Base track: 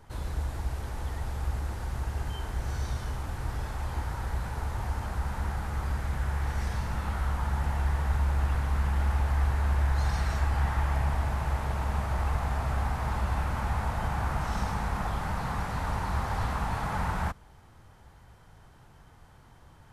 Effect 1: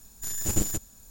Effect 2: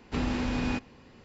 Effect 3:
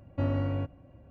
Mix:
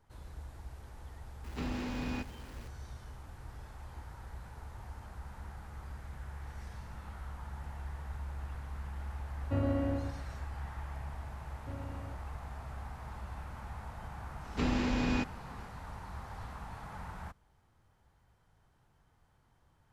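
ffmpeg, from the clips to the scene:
ffmpeg -i bed.wav -i cue0.wav -i cue1.wav -i cue2.wav -filter_complex "[2:a]asplit=2[link_01][link_02];[3:a]asplit=2[link_03][link_04];[0:a]volume=-14.5dB[link_05];[link_01]aeval=exprs='val(0)+0.5*0.00841*sgn(val(0))':channel_layout=same[link_06];[link_03]aecho=1:1:119|238|357|476:0.531|0.154|0.0446|0.0129[link_07];[link_06]atrim=end=1.24,asetpts=PTS-STARTPTS,volume=-8.5dB,afade=type=in:duration=0.004:curve=hsin,afade=type=out:start_time=1.236:duration=0.004:curve=hsin,adelay=1440[link_08];[link_07]atrim=end=1.1,asetpts=PTS-STARTPTS,volume=-3.5dB,afade=type=in:duration=0.004:curve=hsin,afade=type=out:start_time=1.096:duration=0.004:curve=hsin,adelay=9330[link_09];[link_04]atrim=end=1.1,asetpts=PTS-STARTPTS,volume=-16dB,afade=type=in:duration=0.004:curve=hsin,afade=type=out:start_time=1.096:duration=0.004:curve=hsin,adelay=11490[link_10];[link_02]atrim=end=1.24,asetpts=PTS-STARTPTS,volume=-1.5dB,afade=type=in:duration=0.004:curve=hsin,afade=type=out:start_time=1.236:duration=0.004:curve=hsin,adelay=14450[link_11];[link_05][link_08][link_09][link_10][link_11]amix=inputs=5:normalize=0" out.wav

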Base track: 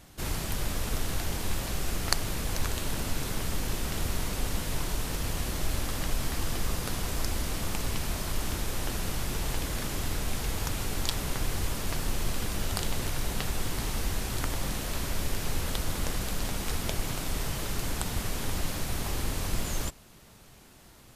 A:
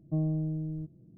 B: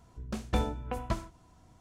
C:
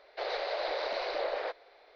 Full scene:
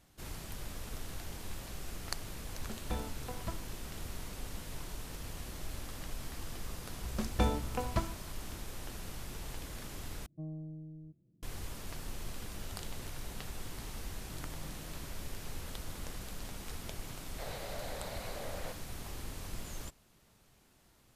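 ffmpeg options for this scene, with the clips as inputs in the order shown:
ffmpeg -i bed.wav -i cue0.wav -i cue1.wav -i cue2.wav -filter_complex "[2:a]asplit=2[link_01][link_02];[1:a]asplit=2[link_03][link_04];[0:a]volume=-12dB[link_05];[link_04]acompressor=threshold=-44dB:ratio=6:attack=3.2:release=140:knee=1:detection=peak[link_06];[3:a]alimiter=level_in=2dB:limit=-24dB:level=0:latency=1:release=71,volume=-2dB[link_07];[link_05]asplit=2[link_08][link_09];[link_08]atrim=end=10.264[link_10];[link_03]atrim=end=1.17,asetpts=PTS-STARTPTS,volume=-13.5dB[link_11];[link_09]atrim=start=11.426[link_12];[link_01]atrim=end=1.8,asetpts=PTS-STARTPTS,volume=-9.5dB,afade=type=in:duration=0.004:curve=hsin,afade=type=out:start_time=1.796:duration=0.004:curve=hsin,adelay=2370[link_13];[link_02]atrim=end=1.8,asetpts=PTS-STARTPTS,volume=-0.5dB,afade=type=in:duration=0.004:curve=hsin,afade=type=out:start_time=1.796:duration=0.004:curve=hsin,adelay=6860[link_14];[link_06]atrim=end=1.17,asetpts=PTS-STARTPTS,volume=-8.5dB,afade=type=in:duration=0.004:curve=hsin,afade=type=out:start_time=1.166:duration=0.004:curve=hsin,adelay=14190[link_15];[link_07]atrim=end=1.95,asetpts=PTS-STARTPTS,volume=-9.5dB,afade=type=in:duration=0.004:curve=hsin,afade=type=out:start_time=1.946:duration=0.004:curve=hsin,adelay=17210[link_16];[link_10][link_11]acrossfade=duration=0.004:curve1=hsin:curve2=hsin[link_17];[link_17][link_12]acrossfade=duration=0.004:curve1=hsin:curve2=hsin[link_18];[link_18][link_13][link_14][link_15][link_16]amix=inputs=5:normalize=0" out.wav

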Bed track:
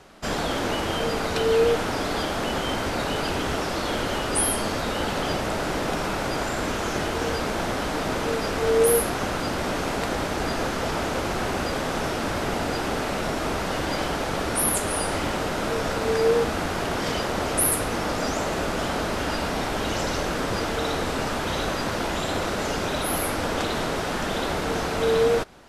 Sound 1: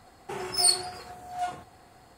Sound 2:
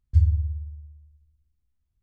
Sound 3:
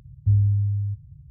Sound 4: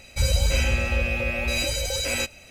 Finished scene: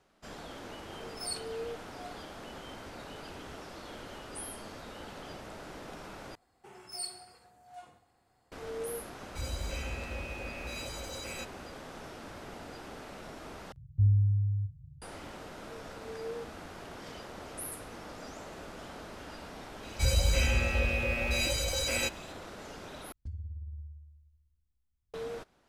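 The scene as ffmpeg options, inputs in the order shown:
ffmpeg -i bed.wav -i cue0.wav -i cue1.wav -i cue2.wav -i cue3.wav -filter_complex "[1:a]asplit=2[link_01][link_02];[4:a]asplit=2[link_03][link_04];[0:a]volume=-19dB[link_05];[link_02]aecho=1:1:66|132|198|264|330|396:0.224|0.123|0.0677|0.0372|0.0205|0.0113[link_06];[3:a]asplit=2[link_07][link_08];[link_08]adelay=41,volume=-11.5dB[link_09];[link_07][link_09]amix=inputs=2:normalize=0[link_10];[2:a]acompressor=threshold=-33dB:ratio=6:attack=3.2:release=140:knee=1:detection=peak[link_11];[link_05]asplit=4[link_12][link_13][link_14][link_15];[link_12]atrim=end=6.354[link_16];[link_06]atrim=end=2.17,asetpts=PTS-STARTPTS,volume=-17dB[link_17];[link_13]atrim=start=8.516:end=13.724[link_18];[link_10]atrim=end=1.3,asetpts=PTS-STARTPTS,volume=-6.5dB[link_19];[link_14]atrim=start=15.016:end=23.124[link_20];[link_11]atrim=end=2.02,asetpts=PTS-STARTPTS,volume=-5.5dB[link_21];[link_15]atrim=start=25.136[link_22];[link_01]atrim=end=2.17,asetpts=PTS-STARTPTS,volume=-16dB,afade=type=in:duration=0.004:curve=hsin,afade=type=out:start_time=2.166:duration=0.004:curve=hsin,adelay=630[link_23];[link_03]atrim=end=2.5,asetpts=PTS-STARTPTS,volume=-16dB,afade=type=in:duration=0.004:curve=hsin,afade=type=out:start_time=2.496:duration=0.004:curve=hsin,adelay=9190[link_24];[link_04]atrim=end=2.5,asetpts=PTS-STARTPTS,volume=-5dB,afade=type=in:duration=0.004:curve=hsin,afade=type=out:start_time=2.496:duration=0.004:curve=hsin,adelay=19830[link_25];[link_16][link_17]acrossfade=duration=0.004:curve1=hsin:curve2=hsin[link_26];[link_26][link_18]acrossfade=duration=0.004:curve1=hsin:curve2=hsin[link_27];[link_27][link_19]acrossfade=duration=0.004:curve1=hsin:curve2=hsin[link_28];[link_28][link_20]acrossfade=duration=0.004:curve1=hsin:curve2=hsin[link_29];[link_29][link_21]acrossfade=duration=0.004:curve1=hsin:curve2=hsin[link_30];[link_30][link_22]acrossfade=duration=0.004:curve1=hsin:curve2=hsin[link_31];[link_31][link_23][link_24][link_25]amix=inputs=4:normalize=0" out.wav

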